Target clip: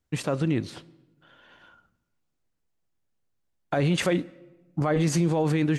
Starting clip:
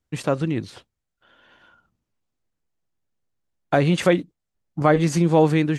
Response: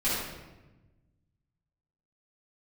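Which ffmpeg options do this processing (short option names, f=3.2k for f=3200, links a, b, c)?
-filter_complex "[0:a]alimiter=limit=-15.5dB:level=0:latency=1:release=16,asplit=2[a][b];[1:a]atrim=start_sample=2205,lowshelf=f=170:g=-11.5,adelay=22[c];[b][c]afir=irnorm=-1:irlink=0,volume=-30.5dB[d];[a][d]amix=inputs=2:normalize=0"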